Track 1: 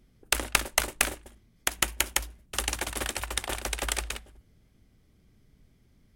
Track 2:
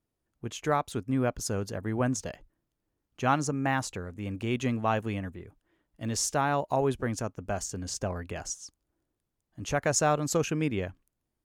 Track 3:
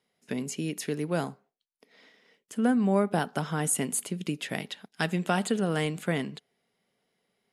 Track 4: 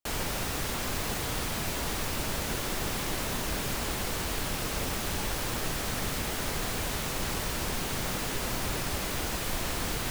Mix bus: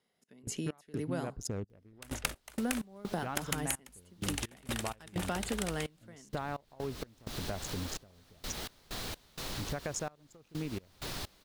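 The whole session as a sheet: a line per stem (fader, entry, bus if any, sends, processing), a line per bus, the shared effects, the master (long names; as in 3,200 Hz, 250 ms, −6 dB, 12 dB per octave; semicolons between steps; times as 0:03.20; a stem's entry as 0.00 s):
−2.0 dB, 1.70 s, no bus, no send, upward compression, threshold −36 dBFS
+3.0 dB, 0.00 s, bus A, no send, adaptive Wiener filter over 41 samples
−2.0 dB, 0.00 s, no bus, no send, notch filter 2,400 Hz
0:06.44 −16 dB → 0:06.84 −7.5 dB, 2.30 s, bus A, no send, drawn EQ curve 2,500 Hz 0 dB, 4,000 Hz +7 dB, 7,400 Hz −1 dB
bus A: 0.0 dB, noise gate with hold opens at −37 dBFS; downward compressor 6 to 1, threshold −31 dBFS, peak gain reduction 13.5 dB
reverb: not used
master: gate pattern "x.x.xxx.." 64 BPM −24 dB; downward compressor 2.5 to 1, threshold −34 dBFS, peak gain reduction 11 dB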